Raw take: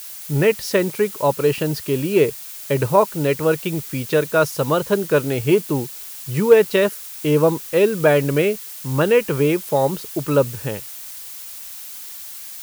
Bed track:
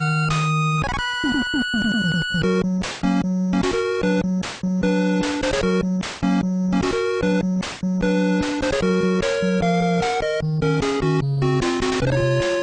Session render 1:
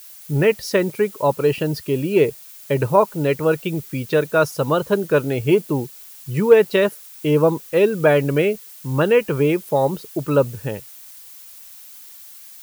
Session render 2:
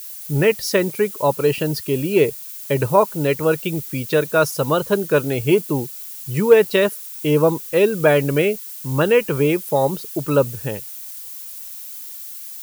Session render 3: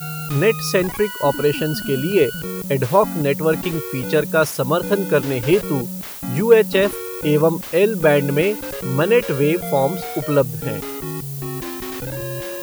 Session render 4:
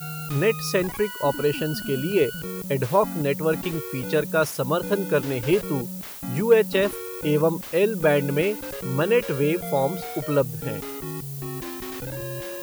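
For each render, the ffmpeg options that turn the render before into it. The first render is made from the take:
-af "afftdn=nr=8:nf=-35"
-af "highshelf=f=4.4k:g=7.5"
-filter_complex "[1:a]volume=-9dB[a];[0:a][a]amix=inputs=2:normalize=0"
-af "volume=-5dB"

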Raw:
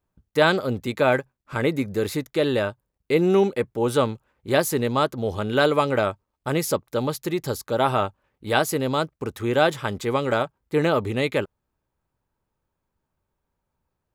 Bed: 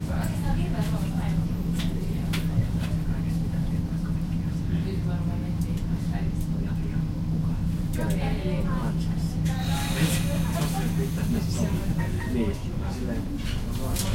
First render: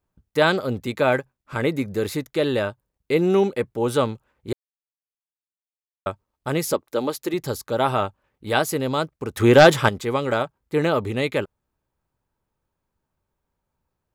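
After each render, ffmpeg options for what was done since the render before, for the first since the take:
-filter_complex "[0:a]asettb=1/sr,asplit=3[a][b][c];[a]atrim=end=6.734[d];[b]atrim=start=6.73:end=7.34,asetpts=PTS-STARTPTS,afade=t=in:d=0.004:c=qsin,afade=t=out:st=0.606:d=0.004:c=qsin,lowshelf=f=210:t=q:w=1.5:g=-9[e];[c]atrim=start=7.336[f];[d][e]acrossfade=d=0.004:c1=hsin:c2=qsin[g];[g][f]acrossfade=d=0.004:c1=qsin:c2=hsin,asettb=1/sr,asplit=3[h][i][j];[h]atrim=end=9.374[k];[i]atrim=start=9.37:end=9.89,asetpts=PTS-STARTPTS,afade=t=in:d=0.004:c=qsin,afade=t=out:st=0.516:d=0.004:c=qsin,aeval=exprs='0.668*sin(PI/2*2*val(0)/0.668)':c=same[l];[j]atrim=start=9.886[m];[k][l]acrossfade=d=0.004:c1=hsin:c2=qsin[n];[n][m]acrossfade=d=0.004:c1=qsin:c2=hsin,asplit=3[o][p][q];[o]atrim=end=4.53,asetpts=PTS-STARTPTS,afade=t=out:st=4.526:d=0.004:c=hsin[r];[p]atrim=start=4.53:end=6.06,asetpts=PTS-STARTPTS,volume=0[s];[q]atrim=start=6.06,asetpts=PTS-STARTPTS,afade=t=in:d=0.004:c=hsin[t];[r][s][t]concat=n=3:v=0:a=1"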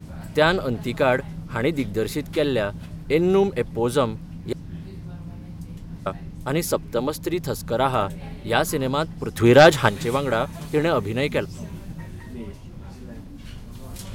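-filter_complex "[1:a]volume=-9.5dB[a];[0:a][a]amix=inputs=2:normalize=0"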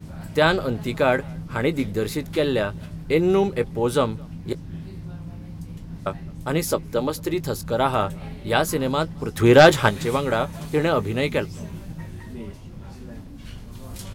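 -filter_complex "[0:a]asplit=2[a][b];[b]adelay=19,volume=-13.5dB[c];[a][c]amix=inputs=2:normalize=0,asplit=2[d][e];[e]adelay=215.7,volume=-29dB,highshelf=f=4k:g=-4.85[f];[d][f]amix=inputs=2:normalize=0"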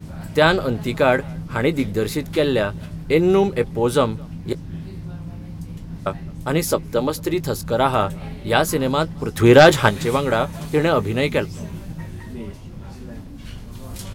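-af "volume=3dB,alimiter=limit=-1dB:level=0:latency=1"

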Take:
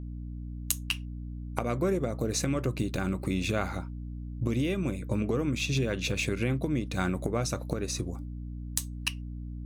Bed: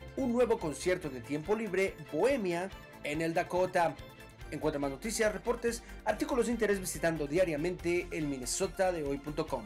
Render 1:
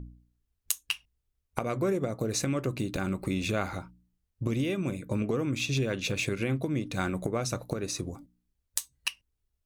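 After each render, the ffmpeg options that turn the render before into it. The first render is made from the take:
-af "bandreject=f=60:t=h:w=4,bandreject=f=120:t=h:w=4,bandreject=f=180:t=h:w=4,bandreject=f=240:t=h:w=4,bandreject=f=300:t=h:w=4"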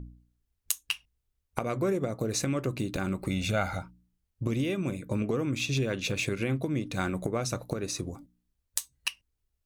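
-filter_complex "[0:a]asettb=1/sr,asplit=3[a][b][c];[a]atrim=end=3.294[d];[b]atrim=start=3.29:end=3.83,asetpts=PTS-STARTPTS,afade=t=in:d=0.004:c=qsin,afade=t=out:st=0.536:d=0.004:c=qsin,aecho=1:1:1.4:0.57,atrim=end_sample=23814[e];[c]atrim=start=3.826[f];[d][e]acrossfade=d=0.004:c1=hsin:c2=qsin[g];[g][f]acrossfade=d=0.004:c1=qsin:c2=hsin"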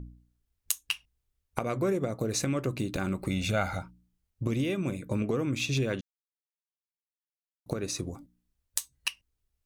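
-filter_complex "[0:a]asplit=3[a][b][c];[a]atrim=end=6.01,asetpts=PTS-STARTPTS,afade=t=out:st=6.006:d=0.004:c=hsin[d];[b]atrim=start=6.01:end=7.66,asetpts=PTS-STARTPTS,volume=0[e];[c]atrim=start=7.66,asetpts=PTS-STARTPTS,afade=t=in:d=0.004:c=hsin[f];[d][e][f]concat=n=3:v=0:a=1"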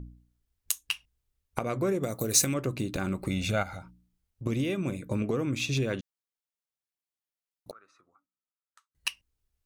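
-filter_complex "[0:a]asettb=1/sr,asplit=3[a][b][c];[a]atrim=end=2.034[d];[b]atrim=start=2.03:end=2.54,asetpts=PTS-STARTPTS,afade=t=in:d=0.004:c=qsin,afade=t=out:st=0.506:d=0.004:c=qsin,aemphasis=mode=production:type=75fm[e];[c]atrim=start=2.536[f];[d][e]acrossfade=d=0.004:c1=hsin:c2=qsin[g];[g][f]acrossfade=d=0.004:c1=qsin:c2=hsin,asplit=3[h][i][j];[h]afade=t=out:st=3.62:d=0.02[k];[i]acompressor=threshold=-42dB:ratio=2:attack=3.2:release=140:knee=1:detection=peak,afade=t=in:st=3.62:d=0.02,afade=t=out:st=4.45:d=0.02[l];[j]afade=t=in:st=4.45:d=0.02[m];[k][l][m]amix=inputs=3:normalize=0,asettb=1/sr,asplit=3[n][o][p];[n]atrim=end=7.714[q];[o]atrim=start=7.71:end=8.95,asetpts=PTS-STARTPTS,afade=t=in:d=0.004:c=qsin,afade=t=out:st=1.236:d=0.004:c=qsin,bandpass=f=1.3k:t=q:w=12[r];[p]atrim=start=8.946[s];[q][r]acrossfade=d=0.004:c1=hsin:c2=qsin[t];[t][s]acrossfade=d=0.004:c1=qsin:c2=hsin"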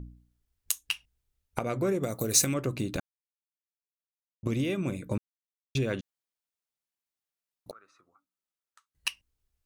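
-filter_complex "[0:a]asettb=1/sr,asplit=3[a][b][c];[a]atrim=end=0.854[d];[b]atrim=start=0.85:end=1.85,asetpts=PTS-STARTPTS,afade=t=in:d=0.004:c=qsin,afade=t=out:st=0.996:d=0.004:c=qsin,bandreject=f=1.1k:w=12[e];[c]atrim=start=1.846[f];[d][e]acrossfade=d=0.004:c1=hsin:c2=qsin[g];[g][f]acrossfade=d=0.004:c1=qsin:c2=hsin,asplit=5[h][i][j][k][l];[h]atrim=end=3,asetpts=PTS-STARTPTS,afade=t=out:st=2.996:d=0.004:c=hsin[m];[i]atrim=start=3:end=4.43,asetpts=PTS-STARTPTS,volume=0[n];[j]atrim=start=4.43:end=5.18,asetpts=PTS-STARTPTS,afade=t=in:d=0.004:c=hsin,afade=t=out:st=0.746:d=0.004:c=hsin[o];[k]atrim=start=5.18:end=5.75,asetpts=PTS-STARTPTS,volume=0[p];[l]atrim=start=5.75,asetpts=PTS-STARTPTS,afade=t=in:d=0.004:c=hsin[q];[m][n][o][p][q]concat=n=5:v=0:a=1"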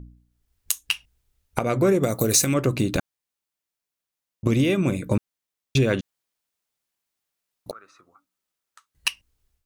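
-af "alimiter=limit=-15.5dB:level=0:latency=1:release=200,dynaudnorm=f=280:g=3:m=9dB"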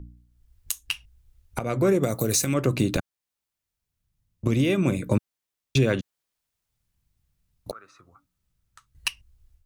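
-filter_complex "[0:a]acrossover=split=120[a][b];[a]acompressor=mode=upward:threshold=-43dB:ratio=2.5[c];[b]alimiter=limit=-11.5dB:level=0:latency=1:release=420[d];[c][d]amix=inputs=2:normalize=0"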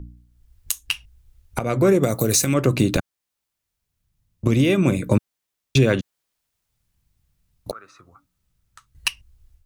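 -af "volume=4.5dB"

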